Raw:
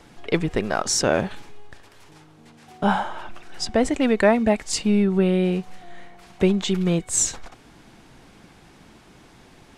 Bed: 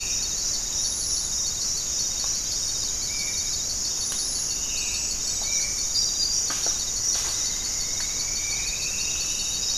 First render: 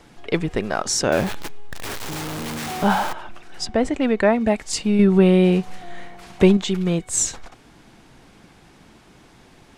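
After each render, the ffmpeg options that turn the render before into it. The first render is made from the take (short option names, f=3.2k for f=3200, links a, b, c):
-filter_complex "[0:a]asettb=1/sr,asplit=3[a][b][c];[a]atrim=end=1.124[d];[b]atrim=start=1.12:end=3.13,asetpts=PTS-STARTPTS,afade=t=in:d=0.004:c=qsin,afade=t=out:st=2.006:d=0.004:c=qsin,aeval=exprs='val(0)+0.5*0.0668*sgn(val(0))':c=same[e];[c]atrim=start=3.126[f];[d][e]acrossfade=d=0.004:c1=hsin:c2=qsin[g];[g][f]acrossfade=d=0.004:c1=qsin:c2=hsin,asettb=1/sr,asplit=3[h][i][j];[h]atrim=end=3.664[k];[i]atrim=start=3.66:end=4.41,asetpts=PTS-STARTPTS,afade=t=in:d=0.004:c=qsin,afade=t=out:st=0.746:d=0.004:c=qsin,highshelf=f=5.3k:g=-9[l];[j]atrim=start=4.406[m];[k][l]acrossfade=d=0.004:c1=hsin:c2=qsin[n];[n][m]acrossfade=d=0.004:c1=qsin:c2=hsin,asettb=1/sr,asplit=3[o][p][q];[o]atrim=end=4.994[r];[p]atrim=start=4.99:end=6.57,asetpts=PTS-STARTPTS,afade=t=in:d=0.004:c=qsin,afade=t=out:st=1.576:d=0.004:c=qsin,acontrast=48[s];[q]atrim=start=6.566[t];[r][s]acrossfade=d=0.004:c1=hsin:c2=qsin[u];[u][t]acrossfade=d=0.004:c1=qsin:c2=hsin"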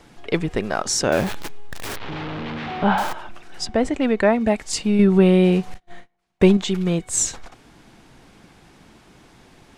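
-filter_complex "[0:a]asettb=1/sr,asplit=3[a][b][c];[a]atrim=end=1.964[d];[b]atrim=start=1.96:end=2.98,asetpts=PTS-STARTPTS,afade=t=in:d=0.004:c=qsin,afade=t=out:st=1.016:d=0.004:c=qsin,lowpass=f=3.5k:w=0.5412,lowpass=f=3.5k:w=1.3066[e];[c]atrim=start=2.976[f];[d][e]acrossfade=d=0.004:c1=hsin:c2=qsin[g];[g][f]acrossfade=d=0.004:c1=qsin:c2=hsin,asettb=1/sr,asplit=3[h][i][j];[h]atrim=end=5.744[k];[i]atrim=start=5.74:end=6.58,asetpts=PTS-STARTPTS,afade=t=in:d=0.004:c=qsin,afade=t=out:st=0.836:d=0.004:c=qsin,agate=range=-34dB:threshold=-29dB:ratio=16:release=100:detection=peak[l];[j]atrim=start=6.576[m];[k][l]acrossfade=d=0.004:c1=hsin:c2=qsin[n];[n][m]acrossfade=d=0.004:c1=qsin:c2=hsin"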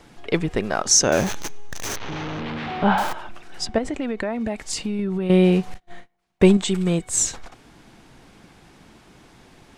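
-filter_complex "[0:a]asettb=1/sr,asplit=3[a][b][c];[a]atrim=end=0.914[d];[b]atrim=start=0.91:end=2.4,asetpts=PTS-STARTPTS,afade=t=in:d=0.004:c=qsin,afade=t=out:st=1.486:d=0.004:c=qsin,equalizer=f=6.2k:w=5.1:g=14.5[e];[c]atrim=start=2.396[f];[d][e]acrossfade=d=0.004:c1=hsin:c2=qsin[g];[g][f]acrossfade=d=0.004:c1=qsin:c2=hsin,asettb=1/sr,asplit=3[h][i][j];[h]atrim=end=3.784[k];[i]atrim=start=3.78:end=5.3,asetpts=PTS-STARTPTS,afade=t=in:d=0.004:c=qsin,afade=t=out:st=1.516:d=0.004:c=qsin,acompressor=threshold=-22dB:ratio=6:attack=3.2:release=140:knee=1:detection=peak[l];[j]atrim=start=5.296[m];[k][l]acrossfade=d=0.004:c1=hsin:c2=qsin[n];[n][m]acrossfade=d=0.004:c1=qsin:c2=hsin,asettb=1/sr,asplit=3[o][p][q];[o]atrim=end=6.454[r];[p]atrim=start=6.45:end=7.02,asetpts=PTS-STARTPTS,afade=t=in:d=0.004:c=qsin,afade=t=out:st=0.566:d=0.004:c=qsin,equalizer=f=8.1k:w=6.2:g=15[s];[q]atrim=start=7.016[t];[r][s]acrossfade=d=0.004:c1=hsin:c2=qsin[u];[u][t]acrossfade=d=0.004:c1=qsin:c2=hsin"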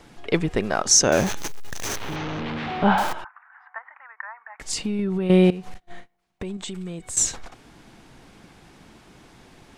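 -filter_complex "[0:a]asettb=1/sr,asplit=3[a][b][c];[a]atrim=end=1.374[d];[b]atrim=start=1.37:end=2.16,asetpts=PTS-STARTPTS,afade=t=in:d=0.004:c=qsin,afade=t=out:st=0.786:d=0.004:c=qsin,acrusher=bits=5:mode=log:mix=0:aa=0.000001[e];[c]atrim=start=2.156[f];[d][e]acrossfade=d=0.004:c1=hsin:c2=qsin[g];[g][f]acrossfade=d=0.004:c1=qsin:c2=hsin,asettb=1/sr,asplit=3[h][i][j];[h]atrim=end=3.244[k];[i]atrim=start=3.24:end=4.6,asetpts=PTS-STARTPTS,afade=t=in:d=0.004:c=qsin,afade=t=out:st=1.356:d=0.004:c=qsin,asuperpass=centerf=1300:order=8:qfactor=1.3[l];[j]atrim=start=4.596[m];[k][l]acrossfade=d=0.004:c1=hsin:c2=qsin[n];[n][m]acrossfade=d=0.004:c1=qsin:c2=hsin,asettb=1/sr,asplit=3[o][p][q];[o]atrim=end=5.504[r];[p]atrim=start=5.5:end=7.17,asetpts=PTS-STARTPTS,afade=t=in:d=0.004:c=qsin,afade=t=out:st=1.666:d=0.004:c=qsin,acompressor=threshold=-29dB:ratio=10:attack=3.2:release=140:knee=1:detection=peak[s];[q]atrim=start=7.166[t];[r][s]acrossfade=d=0.004:c1=hsin:c2=qsin[u];[u][t]acrossfade=d=0.004:c1=qsin:c2=hsin"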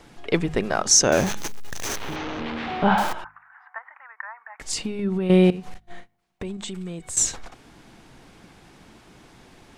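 -af "bandreject=f=51.74:t=h:w=4,bandreject=f=103.48:t=h:w=4,bandreject=f=155.22:t=h:w=4,bandreject=f=206.96:t=h:w=4,bandreject=f=258.7:t=h:w=4"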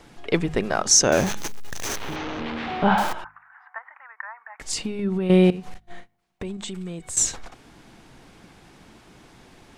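-af anull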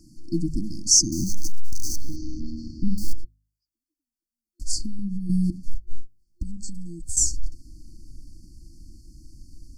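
-af "afftfilt=real='re*(1-between(b*sr/4096,350,4300))':imag='im*(1-between(b*sr/4096,350,4300))':win_size=4096:overlap=0.75,asubboost=boost=9:cutoff=58"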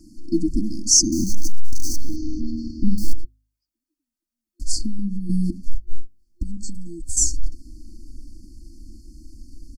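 -af "equalizer=f=210:t=o:w=0.82:g=6.5,aecho=1:1:3.2:0.7"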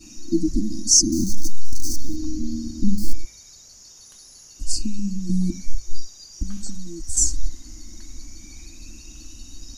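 -filter_complex "[1:a]volume=-19.5dB[a];[0:a][a]amix=inputs=2:normalize=0"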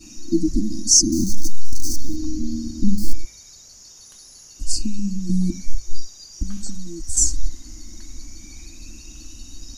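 -af "volume=1.5dB,alimiter=limit=-2dB:level=0:latency=1"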